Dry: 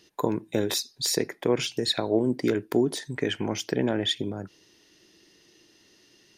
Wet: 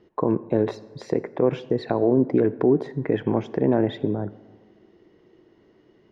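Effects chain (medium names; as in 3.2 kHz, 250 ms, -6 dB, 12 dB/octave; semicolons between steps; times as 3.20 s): low-pass 1 kHz 12 dB/octave; peak limiter -16 dBFS, peak gain reduction 6 dB; on a send at -18.5 dB: reverberation RT60 1.7 s, pre-delay 52 ms; on the sum: speed mistake 24 fps film run at 25 fps; trim +7 dB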